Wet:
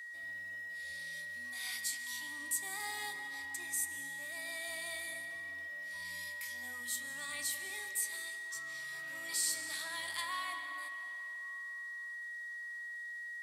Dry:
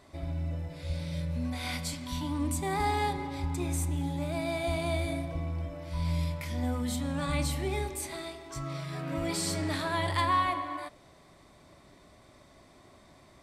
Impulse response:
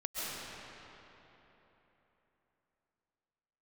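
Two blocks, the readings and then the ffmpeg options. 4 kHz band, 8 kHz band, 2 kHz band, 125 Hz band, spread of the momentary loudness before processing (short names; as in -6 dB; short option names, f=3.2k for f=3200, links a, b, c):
-3.5 dB, +2.0 dB, +2.5 dB, -35.0 dB, 9 LU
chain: -filter_complex "[0:a]aeval=exprs='val(0)+0.02*sin(2*PI*1900*n/s)':c=same,aderivative,asplit=2[a][b];[1:a]atrim=start_sample=2205,adelay=17[c];[b][c]afir=irnorm=-1:irlink=0,volume=-13dB[d];[a][d]amix=inputs=2:normalize=0,volume=1dB"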